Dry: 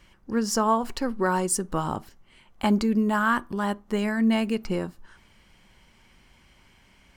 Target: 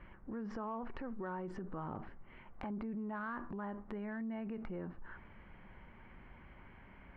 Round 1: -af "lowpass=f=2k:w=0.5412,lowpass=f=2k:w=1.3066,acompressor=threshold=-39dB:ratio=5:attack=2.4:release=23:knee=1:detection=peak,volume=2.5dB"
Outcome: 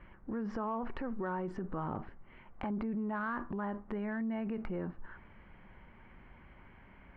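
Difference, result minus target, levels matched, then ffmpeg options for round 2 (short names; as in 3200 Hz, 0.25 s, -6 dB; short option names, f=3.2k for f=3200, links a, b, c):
compressor: peak gain reduction -5 dB
-af "lowpass=f=2k:w=0.5412,lowpass=f=2k:w=1.3066,acompressor=threshold=-45.5dB:ratio=5:attack=2.4:release=23:knee=1:detection=peak,volume=2.5dB"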